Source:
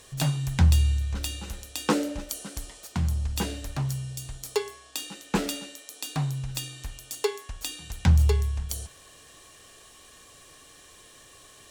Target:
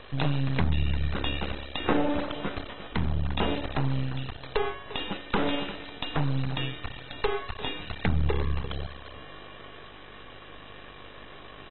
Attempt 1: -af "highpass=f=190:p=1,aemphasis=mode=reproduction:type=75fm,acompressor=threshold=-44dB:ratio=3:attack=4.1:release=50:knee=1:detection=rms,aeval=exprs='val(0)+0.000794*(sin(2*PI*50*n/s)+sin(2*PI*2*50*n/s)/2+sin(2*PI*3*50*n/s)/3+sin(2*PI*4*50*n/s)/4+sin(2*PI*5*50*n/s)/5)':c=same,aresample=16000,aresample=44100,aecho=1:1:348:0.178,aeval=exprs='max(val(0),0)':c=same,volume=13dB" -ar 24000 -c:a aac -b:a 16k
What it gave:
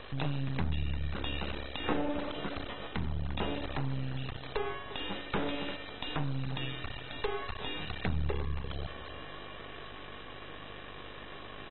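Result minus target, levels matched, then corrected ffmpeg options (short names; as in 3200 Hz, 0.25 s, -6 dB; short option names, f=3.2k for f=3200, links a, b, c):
compressor: peak gain reduction +7 dB
-af "highpass=f=190:p=1,aemphasis=mode=reproduction:type=75fm,acompressor=threshold=-33.5dB:ratio=3:attack=4.1:release=50:knee=1:detection=rms,aeval=exprs='val(0)+0.000794*(sin(2*PI*50*n/s)+sin(2*PI*2*50*n/s)/2+sin(2*PI*3*50*n/s)/3+sin(2*PI*4*50*n/s)/4+sin(2*PI*5*50*n/s)/5)':c=same,aresample=16000,aresample=44100,aecho=1:1:348:0.178,aeval=exprs='max(val(0),0)':c=same,volume=13dB" -ar 24000 -c:a aac -b:a 16k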